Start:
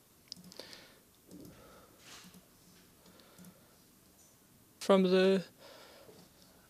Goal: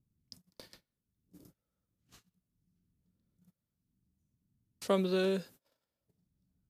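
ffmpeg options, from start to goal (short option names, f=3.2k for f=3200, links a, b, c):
-filter_complex "[0:a]agate=range=-32dB:threshold=-50dB:ratio=16:detection=peak,highshelf=f=11k:g=9,acrossover=split=210[a][b];[a]acompressor=mode=upward:threshold=-52dB:ratio=2.5[c];[c][b]amix=inputs=2:normalize=0,volume=-3.5dB"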